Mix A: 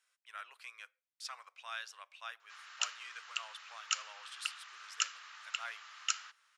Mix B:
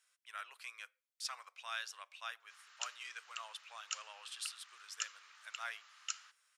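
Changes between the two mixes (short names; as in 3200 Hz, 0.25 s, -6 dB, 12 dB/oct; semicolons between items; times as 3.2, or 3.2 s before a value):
background -10.0 dB; master: add high shelf 5300 Hz +6.5 dB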